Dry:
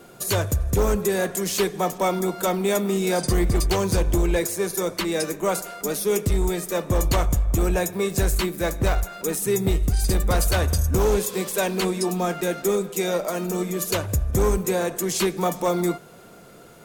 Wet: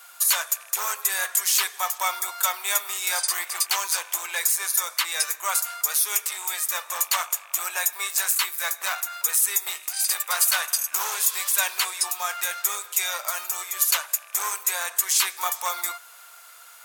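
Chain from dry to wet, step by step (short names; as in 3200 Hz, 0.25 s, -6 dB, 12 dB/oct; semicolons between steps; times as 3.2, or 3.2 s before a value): rattling part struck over -22 dBFS, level -37 dBFS; HPF 1000 Hz 24 dB/oct; high shelf 7800 Hz +8 dB; in parallel at -7 dB: overloaded stage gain 18 dB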